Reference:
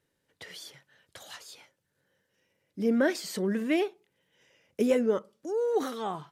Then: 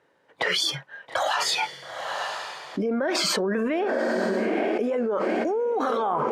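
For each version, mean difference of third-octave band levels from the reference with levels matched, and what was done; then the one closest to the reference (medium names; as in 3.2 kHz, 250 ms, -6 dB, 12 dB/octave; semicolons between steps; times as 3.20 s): 9.5 dB: spectral noise reduction 20 dB; band-pass filter 880 Hz, Q 1.1; echo that smears into a reverb 911 ms, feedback 41%, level -15.5 dB; level flattener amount 100%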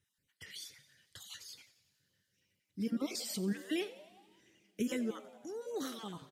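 7.0 dB: random holes in the spectrogram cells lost 24%; amplifier tone stack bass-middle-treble 6-0-2; on a send: frequency-shifting echo 90 ms, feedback 61%, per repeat +95 Hz, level -17.5 dB; on the sum: two-slope reverb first 0.26 s, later 3.7 s, from -20 dB, DRR 16 dB; trim +14 dB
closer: second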